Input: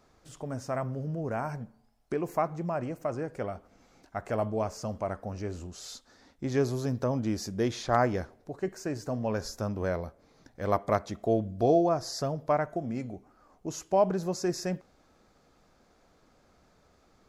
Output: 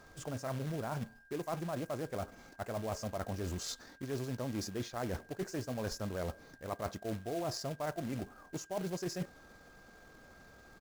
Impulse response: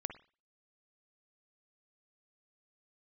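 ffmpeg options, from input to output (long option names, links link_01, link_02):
-af "areverse,acompressor=threshold=-40dB:ratio=10,areverse,atempo=1.6,acrusher=bits=3:mode=log:mix=0:aa=0.000001,aeval=exprs='val(0)+0.000562*sin(2*PI*1600*n/s)':channel_layout=same,volume=5dB"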